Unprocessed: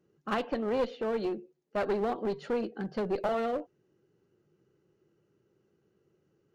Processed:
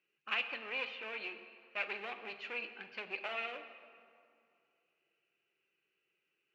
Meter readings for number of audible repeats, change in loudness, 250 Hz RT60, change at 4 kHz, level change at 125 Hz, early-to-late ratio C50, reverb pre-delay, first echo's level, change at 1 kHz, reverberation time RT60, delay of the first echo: no echo, -7.5 dB, 2.5 s, +3.5 dB, under -25 dB, 10.0 dB, 21 ms, no echo, -10.5 dB, 2.5 s, no echo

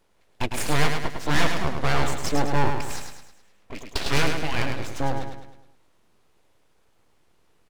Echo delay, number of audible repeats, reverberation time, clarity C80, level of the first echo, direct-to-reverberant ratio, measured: 105 ms, 5, no reverb, no reverb, -5.5 dB, no reverb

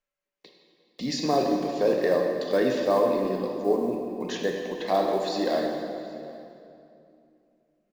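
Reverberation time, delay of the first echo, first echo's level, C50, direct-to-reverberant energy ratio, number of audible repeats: 2.7 s, 773 ms, -23.5 dB, 2.5 dB, 1.0 dB, 1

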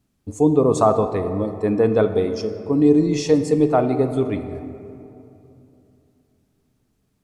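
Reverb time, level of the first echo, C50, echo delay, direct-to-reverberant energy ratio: 2.9 s, no echo, 9.5 dB, no echo, 8.5 dB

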